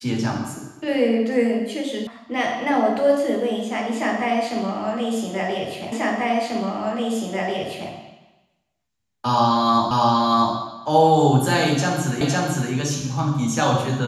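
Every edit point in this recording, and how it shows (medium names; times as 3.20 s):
2.07 s: sound stops dead
5.92 s: repeat of the last 1.99 s
9.91 s: repeat of the last 0.64 s
12.21 s: repeat of the last 0.51 s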